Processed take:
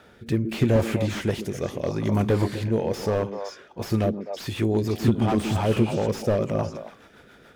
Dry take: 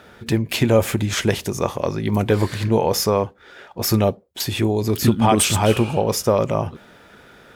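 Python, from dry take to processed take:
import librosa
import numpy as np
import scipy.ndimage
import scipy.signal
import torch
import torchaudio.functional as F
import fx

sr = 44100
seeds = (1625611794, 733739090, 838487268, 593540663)

y = fx.echo_stepped(x, sr, ms=127, hz=260.0, octaves=1.4, feedback_pct=70, wet_db=-6)
y = fx.rotary_switch(y, sr, hz=0.8, then_hz=7.0, switch_at_s=3.3)
y = fx.slew_limit(y, sr, full_power_hz=93.0)
y = F.gain(torch.from_numpy(y), -2.5).numpy()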